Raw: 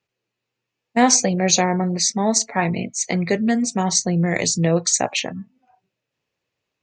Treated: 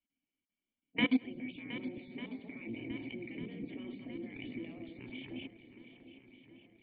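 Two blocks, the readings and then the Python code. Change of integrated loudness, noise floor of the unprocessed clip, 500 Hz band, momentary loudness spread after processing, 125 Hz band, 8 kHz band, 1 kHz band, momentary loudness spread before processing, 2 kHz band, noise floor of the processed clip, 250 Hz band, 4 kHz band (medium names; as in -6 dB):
-21.0 dB, -82 dBFS, -24.5 dB, 23 LU, -26.5 dB, under -40 dB, -30.5 dB, 8 LU, -15.0 dB, under -85 dBFS, -16.5 dB, -21.0 dB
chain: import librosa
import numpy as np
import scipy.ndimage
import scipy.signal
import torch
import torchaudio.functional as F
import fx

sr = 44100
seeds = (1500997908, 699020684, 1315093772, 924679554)

p1 = fx.reverse_delay_fb(x, sr, ms=104, feedback_pct=68, wet_db=-12.5)
p2 = fx.spec_gate(p1, sr, threshold_db=-10, keep='weak')
p3 = fx.env_lowpass(p2, sr, base_hz=2400.0, full_db=-15.0)
p4 = fx.level_steps(p3, sr, step_db=23)
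p5 = fx.formant_cascade(p4, sr, vowel='i')
p6 = p5 + fx.echo_swing(p5, sr, ms=1197, ratio=1.5, feedback_pct=46, wet_db=-13, dry=0)
y = F.gain(torch.from_numpy(p6), 14.0).numpy()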